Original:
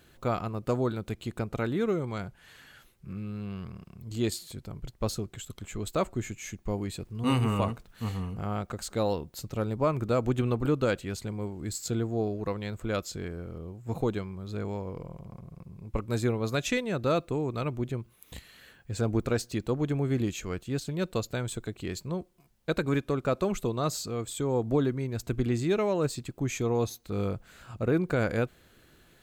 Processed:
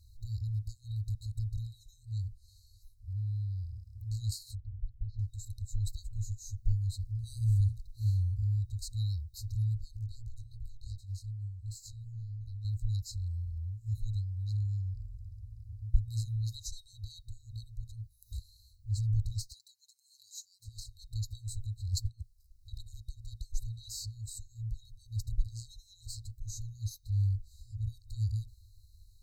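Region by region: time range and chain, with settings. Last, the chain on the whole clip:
0:04.55–0:05.19: low-pass filter 2,400 Hz 24 dB per octave + downward compressor 2 to 1, threshold −40 dBFS
0:09.96–0:12.65: chorus effect 2.8 Hz, delay 16.5 ms, depth 5.7 ms + tube saturation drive 20 dB, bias 0.75
0:19.53–0:20.65: high-pass filter 550 Hz 24 dB per octave + comb filter 5.9 ms, depth 74%
0:21.88–0:22.80: compressor whose output falls as the input rises −37 dBFS + transient designer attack +11 dB, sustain −4 dB
whole clip: brick-wall band-stop 110–3,800 Hz; spectral tilt −2 dB per octave

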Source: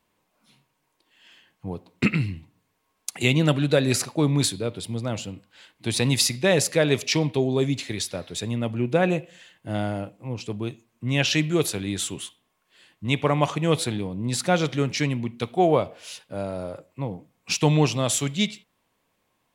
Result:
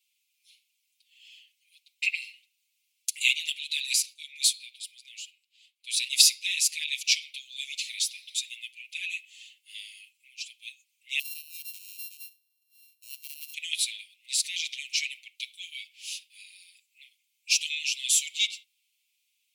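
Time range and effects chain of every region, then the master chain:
0:04.00–0:07.05: shaped tremolo saw up 7.7 Hz, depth 30% + multiband upward and downward expander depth 40%
0:11.19–0:13.54: samples sorted by size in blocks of 32 samples + downward compressor 2 to 1, threshold −41 dBFS + first-order pre-emphasis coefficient 0.8
whole clip: Butterworth high-pass 2,300 Hz 72 dB per octave; comb filter 6.6 ms, depth 91%

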